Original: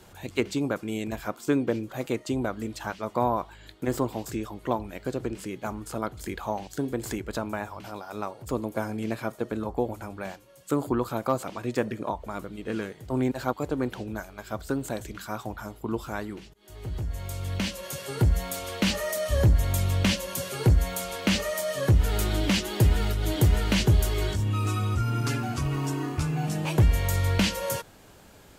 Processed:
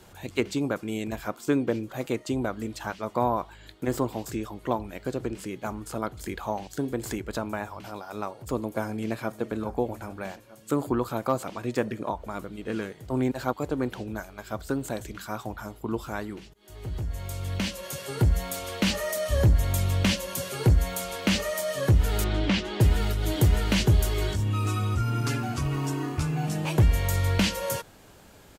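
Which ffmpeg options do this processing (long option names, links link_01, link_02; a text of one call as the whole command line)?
ffmpeg -i in.wav -filter_complex "[0:a]asplit=2[link_01][link_02];[link_02]afade=type=in:start_time=8.83:duration=0.01,afade=type=out:start_time=9.35:duration=0.01,aecho=0:1:420|840|1260|1680|2100|2520|2940|3360|3780:0.125893|0.0944194|0.0708146|0.0531109|0.0398332|0.0298749|0.0224062|0.0168046|0.0126035[link_03];[link_01][link_03]amix=inputs=2:normalize=0,asettb=1/sr,asplit=3[link_04][link_05][link_06];[link_04]atrim=end=22.244[link_07];[link_05]atrim=start=22.24:end=22.81,asetpts=PTS-STARTPTS,afade=type=in:duration=0.004:curve=qsin,afade=type=out:start_time=0.566:duration=0.004:curve=qsin,lowpass=4000[link_08];[link_06]atrim=start=22.806[link_09];[link_07][link_08]acrossfade=duration=0.004:curve1=hsin:curve2=qsin[link_10];[link_10][link_09]acrossfade=duration=0.004:curve1=qsin:curve2=hsin" out.wav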